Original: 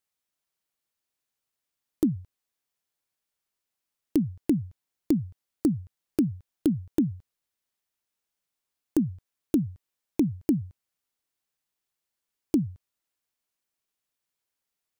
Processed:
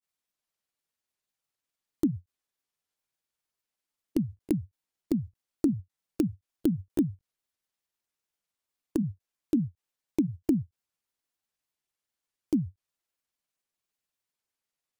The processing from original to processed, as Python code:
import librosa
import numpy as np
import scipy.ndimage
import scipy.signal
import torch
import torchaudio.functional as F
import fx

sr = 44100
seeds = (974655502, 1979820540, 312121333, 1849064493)

y = fx.granulator(x, sr, seeds[0], grain_ms=100.0, per_s=20.0, spray_ms=14.0, spread_st=0)
y = fx.end_taper(y, sr, db_per_s=530.0)
y = y * librosa.db_to_amplitude(-1.0)